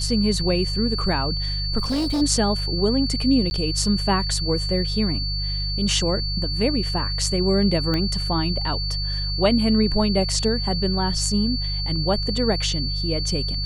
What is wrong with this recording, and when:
hum 50 Hz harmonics 3 -27 dBFS
tone 4500 Hz -27 dBFS
1.78–2.22 clipped -19.5 dBFS
3.5–3.51 gap 10 ms
7.94 pop -12 dBFS

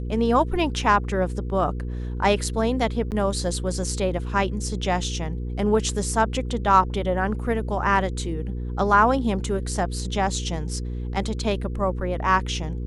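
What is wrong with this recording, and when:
hum 60 Hz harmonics 8 -29 dBFS
3.11–3.12 gap 8.8 ms

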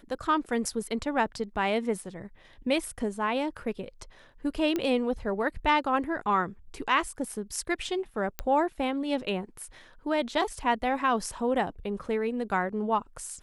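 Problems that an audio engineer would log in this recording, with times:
4.76 pop -16 dBFS
8.39 pop -14 dBFS

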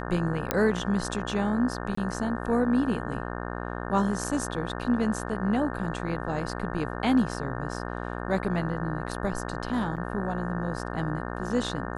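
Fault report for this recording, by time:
buzz 60 Hz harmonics 30 -34 dBFS
0.51 pop -8 dBFS
1.95–1.97 gap 24 ms
9.96–9.97 gap 7.4 ms

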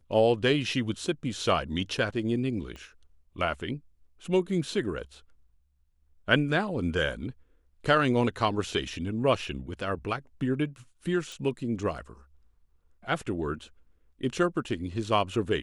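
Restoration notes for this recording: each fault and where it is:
2.76 pop -29 dBFS
11.32 pop

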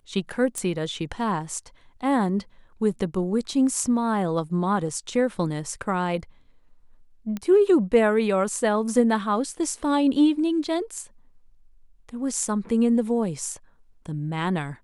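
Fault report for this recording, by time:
0.58 pop -17 dBFS
7.37 pop -18 dBFS

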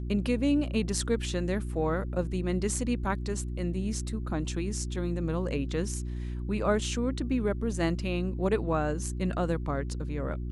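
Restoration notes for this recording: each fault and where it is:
hum 60 Hz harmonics 6 -34 dBFS

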